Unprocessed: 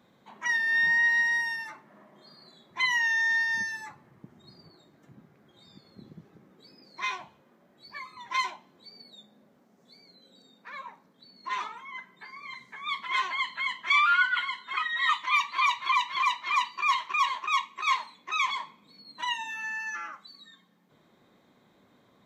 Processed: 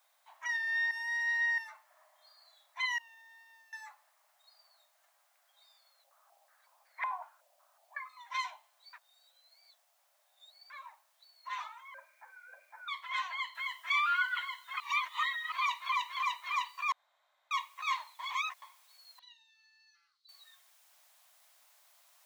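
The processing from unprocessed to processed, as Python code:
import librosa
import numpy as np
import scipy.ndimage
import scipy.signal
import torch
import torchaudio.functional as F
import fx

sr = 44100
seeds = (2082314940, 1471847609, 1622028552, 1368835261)

y = fx.vowel_filter(x, sr, vowel='a', at=(2.98, 3.73))
y = fx.filter_held_lowpass(y, sr, hz=5.4, low_hz=630.0, high_hz=2000.0, at=(6.03, 8.08), fade=0.02)
y = fx.freq_invert(y, sr, carrier_hz=2600, at=(11.94, 12.88))
y = fx.noise_floor_step(y, sr, seeds[0], at_s=13.55, before_db=-67, after_db=-58, tilt_db=0.0)
y = fx.bandpass_q(y, sr, hz=4300.0, q=12.0, at=(19.19, 20.29))
y = fx.edit(y, sr, fx.reverse_span(start_s=0.91, length_s=0.67),
    fx.reverse_span(start_s=8.93, length_s=1.77),
    fx.reverse_span(start_s=14.8, length_s=0.72),
    fx.room_tone_fill(start_s=16.92, length_s=0.59),
    fx.reverse_span(start_s=18.19, length_s=0.43), tone=tone)
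y = scipy.signal.sosfilt(scipy.signal.butter(12, 610.0, 'highpass', fs=sr, output='sos'), y)
y = y * librosa.db_to_amplitude(-7.5)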